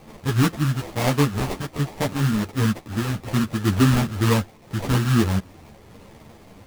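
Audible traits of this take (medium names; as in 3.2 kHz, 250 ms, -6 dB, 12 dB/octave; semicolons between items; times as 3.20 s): a quantiser's noise floor 8-bit, dither triangular; phasing stages 4, 1.2 Hz, lowest notch 530–3200 Hz; aliases and images of a low sample rate 1.5 kHz, jitter 20%; a shimmering, thickened sound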